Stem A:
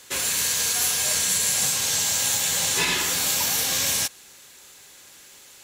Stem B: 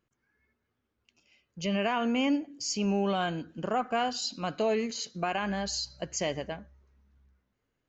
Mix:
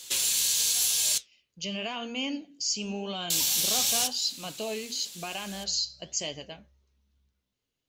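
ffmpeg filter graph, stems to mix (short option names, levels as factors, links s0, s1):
-filter_complex "[0:a]acompressor=threshold=0.0355:ratio=2.5,volume=0.75,asplit=3[s0][s1][s2];[s0]atrim=end=1.18,asetpts=PTS-STARTPTS,afade=t=out:st=1.176:d=0.004:c=hsin[s3];[s1]atrim=start=1.18:end=3.3,asetpts=PTS-STARTPTS,volume=0[s4];[s2]atrim=start=3.3,asetpts=PTS-STARTPTS,afade=t=in:d=0.004:c=hsin[s5];[s3][s4][s5]concat=n=3:v=0:a=1[s6];[1:a]volume=0.75[s7];[s6][s7]amix=inputs=2:normalize=0,highshelf=f=2400:t=q:w=1.5:g=10,flanger=delay=6.2:depth=9.4:regen=-75:speed=0.94:shape=sinusoidal"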